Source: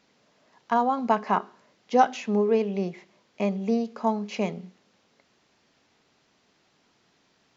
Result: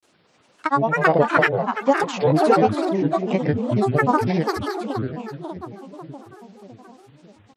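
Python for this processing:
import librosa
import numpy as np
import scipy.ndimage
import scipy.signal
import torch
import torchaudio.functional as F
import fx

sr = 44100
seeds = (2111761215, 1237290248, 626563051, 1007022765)

y = fx.echo_split(x, sr, split_hz=750.0, low_ms=563, high_ms=271, feedback_pct=52, wet_db=-4)
y = fx.granulator(y, sr, seeds[0], grain_ms=100.0, per_s=20.0, spray_ms=100.0, spread_st=12)
y = y * librosa.db_to_amplitude(5.5)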